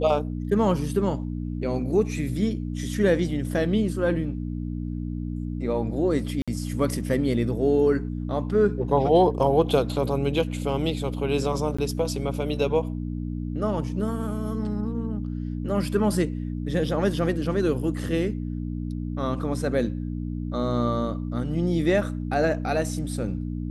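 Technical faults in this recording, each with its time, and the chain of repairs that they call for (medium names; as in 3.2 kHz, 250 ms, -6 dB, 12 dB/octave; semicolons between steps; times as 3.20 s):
hum 60 Hz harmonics 5 -30 dBFS
6.42–6.48 s: dropout 56 ms
11.77–11.79 s: dropout 15 ms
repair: de-hum 60 Hz, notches 5; interpolate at 6.42 s, 56 ms; interpolate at 11.77 s, 15 ms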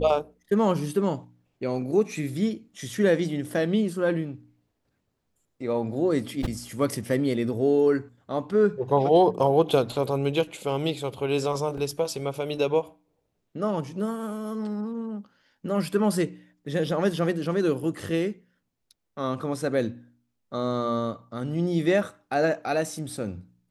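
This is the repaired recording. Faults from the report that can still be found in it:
nothing left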